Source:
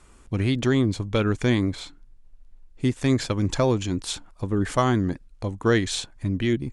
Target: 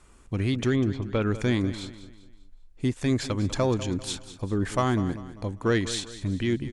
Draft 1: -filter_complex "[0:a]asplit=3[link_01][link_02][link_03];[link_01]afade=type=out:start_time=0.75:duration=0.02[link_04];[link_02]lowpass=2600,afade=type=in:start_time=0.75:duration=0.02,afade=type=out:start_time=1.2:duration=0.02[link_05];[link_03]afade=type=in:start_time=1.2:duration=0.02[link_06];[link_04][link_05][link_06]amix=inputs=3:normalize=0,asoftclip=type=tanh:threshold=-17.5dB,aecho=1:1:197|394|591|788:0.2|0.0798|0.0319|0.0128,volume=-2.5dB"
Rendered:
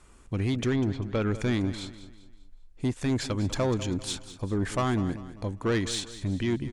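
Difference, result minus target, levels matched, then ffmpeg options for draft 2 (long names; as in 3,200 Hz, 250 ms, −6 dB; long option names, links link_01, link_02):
soft clipping: distortion +11 dB
-filter_complex "[0:a]asplit=3[link_01][link_02][link_03];[link_01]afade=type=out:start_time=0.75:duration=0.02[link_04];[link_02]lowpass=2600,afade=type=in:start_time=0.75:duration=0.02,afade=type=out:start_time=1.2:duration=0.02[link_05];[link_03]afade=type=in:start_time=1.2:duration=0.02[link_06];[link_04][link_05][link_06]amix=inputs=3:normalize=0,asoftclip=type=tanh:threshold=-9.5dB,aecho=1:1:197|394|591|788:0.2|0.0798|0.0319|0.0128,volume=-2.5dB"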